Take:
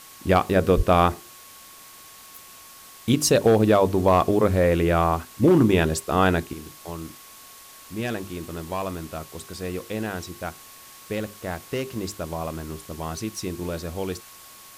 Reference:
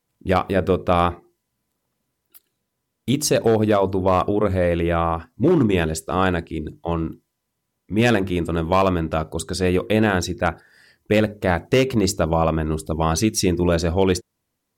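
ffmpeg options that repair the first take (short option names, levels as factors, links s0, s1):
-filter_complex "[0:a]bandreject=f=1100:w=30,asplit=3[s0][s1][s2];[s0]afade=t=out:st=0.76:d=0.02[s3];[s1]highpass=f=140:w=0.5412,highpass=f=140:w=1.3066,afade=t=in:st=0.76:d=0.02,afade=t=out:st=0.88:d=0.02[s4];[s2]afade=t=in:st=0.88:d=0.02[s5];[s3][s4][s5]amix=inputs=3:normalize=0,afwtdn=0.0056,asetnsamples=n=441:p=0,asendcmd='6.53 volume volume 11.5dB',volume=1"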